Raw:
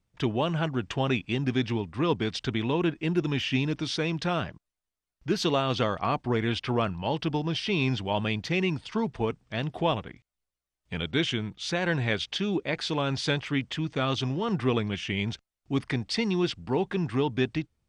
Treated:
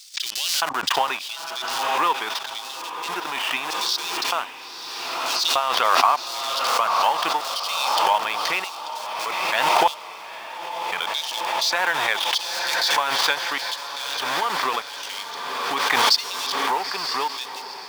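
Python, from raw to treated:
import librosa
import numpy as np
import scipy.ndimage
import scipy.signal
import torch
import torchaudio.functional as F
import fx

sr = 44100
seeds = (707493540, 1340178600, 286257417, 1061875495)

p1 = fx.transient(x, sr, attack_db=8, sustain_db=-6)
p2 = fx.schmitt(p1, sr, flips_db=-31.5)
p3 = p1 + (p2 * 10.0 ** (-5.0 / 20.0))
p4 = fx.filter_lfo_highpass(p3, sr, shape='square', hz=0.81, low_hz=960.0, high_hz=4600.0, q=2.4)
p5 = fx.echo_diffused(p4, sr, ms=913, feedback_pct=66, wet_db=-10.5)
y = fx.pre_swell(p5, sr, db_per_s=23.0)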